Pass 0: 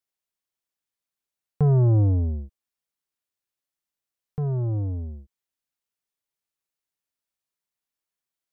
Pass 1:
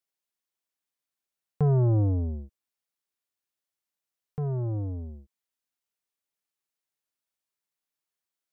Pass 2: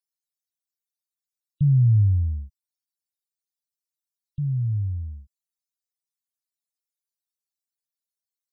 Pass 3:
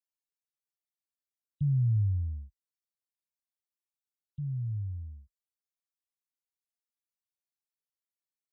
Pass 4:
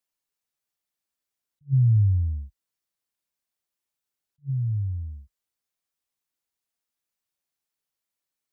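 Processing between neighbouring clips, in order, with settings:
bass shelf 130 Hz -6 dB; trim -1 dB
inverse Chebyshev band-stop 490–1000 Hz, stop band 80 dB; loudest bins only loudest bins 64; trim +6 dB
high-pass 40 Hz 24 dB/octave; trim -9 dB
attacks held to a fixed rise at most 460 dB/s; trim +7.5 dB

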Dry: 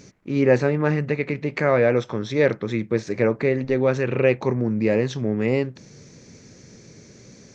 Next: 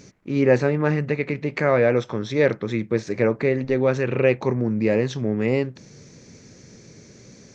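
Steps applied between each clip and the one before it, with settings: no audible change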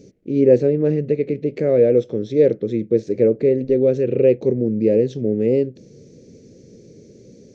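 FFT filter 130 Hz 0 dB, 490 Hz +8 dB, 990 Hz -22 dB, 3 kHz -7 dB; trim -1 dB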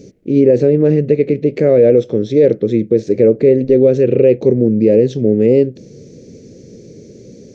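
loudness maximiser +8.5 dB; trim -1 dB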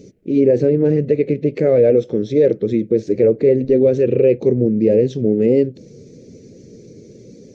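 coarse spectral quantiser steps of 15 dB; trim -3 dB

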